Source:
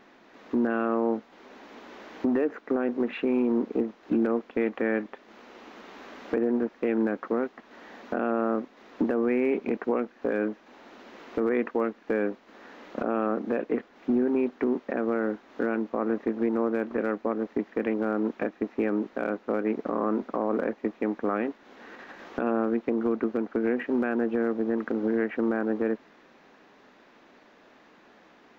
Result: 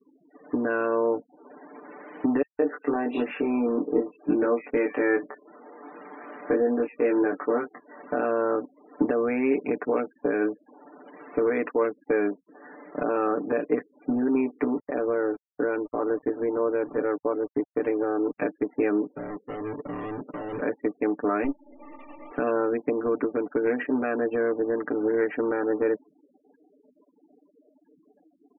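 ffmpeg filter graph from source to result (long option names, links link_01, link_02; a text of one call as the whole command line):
ffmpeg -i in.wav -filter_complex "[0:a]asettb=1/sr,asplit=3[link_01][link_02][link_03];[link_01]atrim=end=2.424[link_04];[link_02]atrim=start=2.42:end=7.99,asetpts=PTS-STARTPTS,afade=type=in:duration=0.004:curve=qsin,afade=type=out:start_time=5.566:duration=0.004:curve=qsin,equalizer=frequency=190:width_type=o:width=0.78:gain=-3.5,asplit=2[link_05][link_06];[link_06]adelay=21,volume=-3dB[link_07];[link_05][link_07]amix=inputs=2:normalize=0,atrim=end_sample=245637,acrossover=split=2900[link_08][link_09];[link_08]adelay=170[link_10];[link_10][link_09]amix=inputs=2:normalize=0,atrim=end_sample=245637[link_11];[link_03]atrim=start=7.986[link_12];[link_04][link_11]acrossfade=duration=0.004:curve1=hsin:curve2=qsin[link_13];[link_13][link_12]acrossfade=duration=0.004:curve1=qsin:curve2=hsin,asettb=1/sr,asplit=3[link_14][link_15][link_16];[link_14]atrim=end=14.754[link_17];[link_15]atrim=start=14.75:end=18.38,asetpts=PTS-STARTPTS,afade=type=in:duration=0.004:curve=qsin,afade=type=out:start_time=3.626:duration=0.004:curve=qsin,lowpass=frequency=1400:poles=1,equalizer=frequency=210:width_type=o:width=0.22:gain=-9.5,aeval=exprs='val(0)*gte(abs(val(0)),0.00668)':channel_layout=same[link_18];[link_16]atrim=start=18.376[link_19];[link_17][link_18]acrossfade=duration=0.004:curve1=hsin:curve2=qsin[link_20];[link_20][link_19]acrossfade=duration=0.004:curve1=qsin:curve2=hsin,asettb=1/sr,asplit=3[link_21][link_22][link_23];[link_21]atrim=end=19.164[link_24];[link_22]atrim=start=19.16:end=20.61,asetpts=PTS-STARTPTS,afade=type=in:duration=0.004:curve=qsin,afade=type=out:start_time=1.446:duration=0.004:curve=qsin,lowpass=frequency=1100:width=0.5412,lowpass=frequency=1100:width=1.3066,bandreject=frequency=710:width=10,volume=33dB,asoftclip=hard,volume=-33dB[link_25];[link_23]atrim=start=20.606[link_26];[link_24][link_25]acrossfade=duration=0.004:curve1=hsin:curve2=qsin[link_27];[link_27][link_26]acrossfade=duration=0.004:curve1=qsin:curve2=hsin,asettb=1/sr,asplit=3[link_28][link_29][link_30];[link_28]atrim=end=21.444[link_31];[link_29]atrim=start=21.44:end=22.31,asetpts=PTS-STARTPTS,afade=type=in:duration=0.004:curve=qsin,afade=type=out:start_time=0.866:duration=0.004:curve=qsin,aeval=exprs='if(lt(val(0),0),0.447*val(0),val(0))':channel_layout=same,asuperstop=centerf=1600:order=4:qfactor=2.7,aecho=1:1:3.4:0.84,atrim=end_sample=38367[link_32];[link_30]atrim=start=22.306[link_33];[link_31][link_32]acrossfade=duration=0.004:curve1=hsin:curve2=qsin[link_34];[link_34][link_33]acrossfade=duration=0.004:curve1=qsin:curve2=hsin,afftfilt=real='re*gte(hypot(re,im),0.00708)':imag='im*gte(hypot(re,im),0.00708)':win_size=1024:overlap=0.75,aecho=1:1:6.8:0.87" out.wav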